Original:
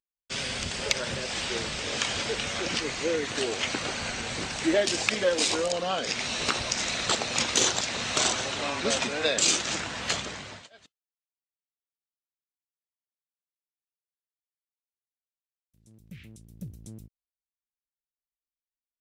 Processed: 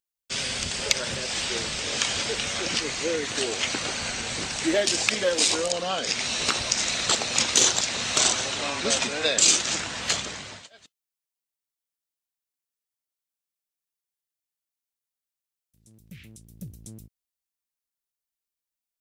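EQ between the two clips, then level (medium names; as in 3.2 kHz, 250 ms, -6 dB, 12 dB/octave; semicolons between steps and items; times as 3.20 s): treble shelf 4 kHz +7.5 dB; 0.0 dB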